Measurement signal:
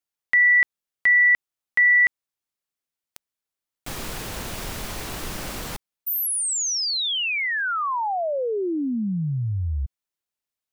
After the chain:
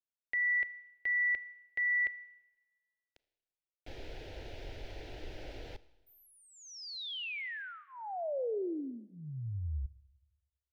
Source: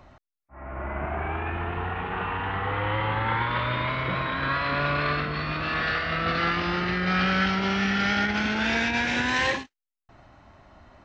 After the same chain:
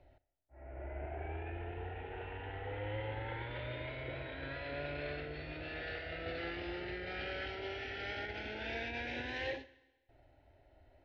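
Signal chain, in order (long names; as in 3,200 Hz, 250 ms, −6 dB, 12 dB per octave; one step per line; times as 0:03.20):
high-frequency loss of the air 270 metres
phaser with its sweep stopped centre 470 Hz, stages 4
four-comb reverb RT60 1.1 s, combs from 26 ms, DRR 17 dB
level −8.5 dB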